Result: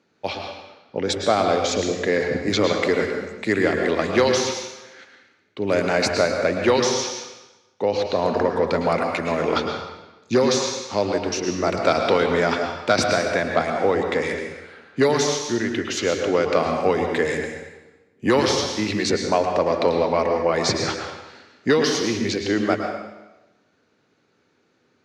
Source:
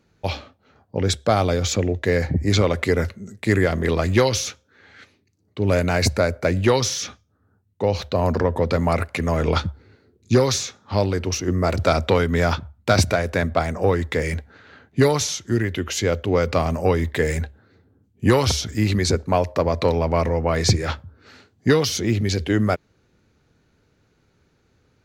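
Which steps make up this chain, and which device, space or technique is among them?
supermarket ceiling speaker (BPF 240–6500 Hz; reverb RT60 1.1 s, pre-delay 0.1 s, DRR 3 dB)

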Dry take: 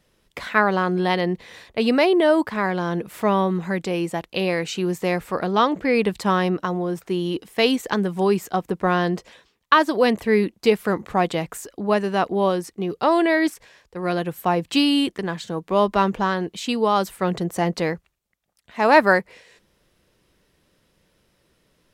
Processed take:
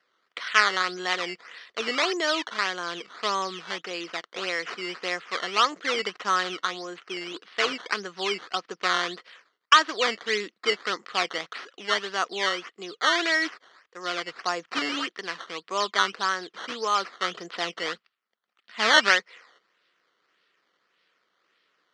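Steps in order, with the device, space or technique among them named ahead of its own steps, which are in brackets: 17.84–19.1 bell 220 Hz +10.5 dB 0.31 oct; circuit-bent sampling toy (decimation with a swept rate 12×, swing 100% 1.7 Hz; speaker cabinet 590–5900 Hz, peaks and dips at 600 Hz -6 dB, 860 Hz -8 dB, 1300 Hz +6 dB, 1900 Hz +4 dB, 3100 Hz +5 dB, 4500 Hz +4 dB); gain -3 dB

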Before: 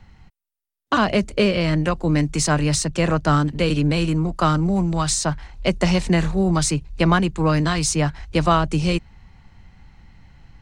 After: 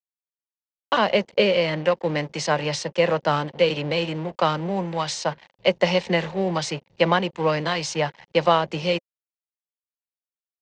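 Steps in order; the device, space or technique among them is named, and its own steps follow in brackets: blown loudspeaker (crossover distortion -34.5 dBFS; speaker cabinet 220–5700 Hz, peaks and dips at 280 Hz -9 dB, 530 Hz +9 dB, 880 Hz +5 dB, 1300 Hz -4 dB, 2000 Hz +4 dB, 3000 Hz +5 dB); gain -1.5 dB

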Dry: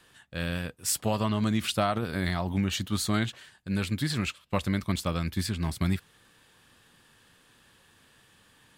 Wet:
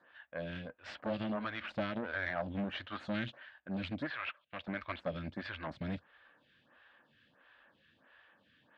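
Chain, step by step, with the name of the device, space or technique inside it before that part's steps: vibe pedal into a guitar amplifier (photocell phaser 1.5 Hz; tube stage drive 31 dB, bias 0.75; speaker cabinet 75–3400 Hz, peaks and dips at 77 Hz -4 dB, 110 Hz -8 dB, 170 Hz -6 dB, 410 Hz -9 dB, 590 Hz +7 dB, 1600 Hz +6 dB); 4.1–4.68 three-band isolator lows -14 dB, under 540 Hz, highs -13 dB, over 3900 Hz; gain +2 dB

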